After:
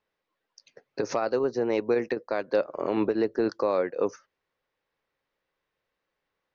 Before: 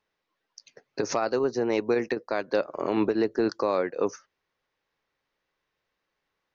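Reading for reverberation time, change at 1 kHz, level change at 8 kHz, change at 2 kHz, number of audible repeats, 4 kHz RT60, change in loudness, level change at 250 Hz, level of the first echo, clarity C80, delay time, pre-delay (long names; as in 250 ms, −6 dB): no reverb audible, −1.5 dB, can't be measured, −2.0 dB, no echo audible, no reverb audible, −0.5 dB, −1.5 dB, no echo audible, no reverb audible, no echo audible, no reverb audible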